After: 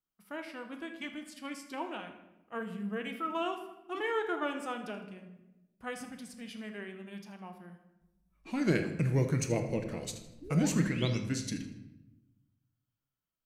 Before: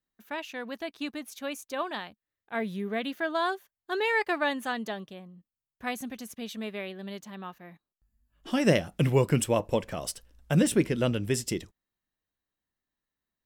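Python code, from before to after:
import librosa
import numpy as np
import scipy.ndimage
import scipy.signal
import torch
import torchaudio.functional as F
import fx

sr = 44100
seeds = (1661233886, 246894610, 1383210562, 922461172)

p1 = fx.spec_paint(x, sr, seeds[0], shape='rise', start_s=10.42, length_s=0.77, low_hz=320.0, high_hz=8000.0, level_db=-35.0)
p2 = fx.formant_shift(p1, sr, semitones=-4)
p3 = p2 + fx.echo_feedback(p2, sr, ms=79, feedback_pct=37, wet_db=-16.0, dry=0)
p4 = fx.room_shoebox(p3, sr, seeds[1], volume_m3=420.0, walls='mixed', distance_m=0.62)
y = p4 * 10.0 ** (-6.5 / 20.0)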